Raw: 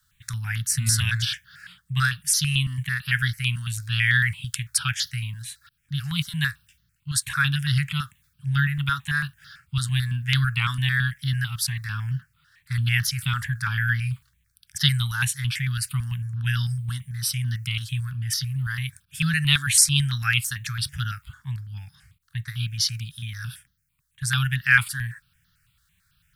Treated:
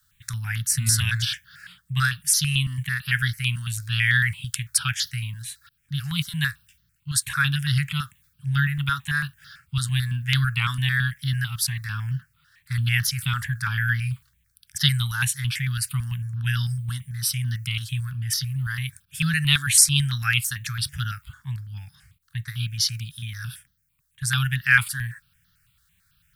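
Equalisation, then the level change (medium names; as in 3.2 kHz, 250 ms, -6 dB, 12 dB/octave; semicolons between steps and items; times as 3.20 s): treble shelf 12 kHz +6 dB; 0.0 dB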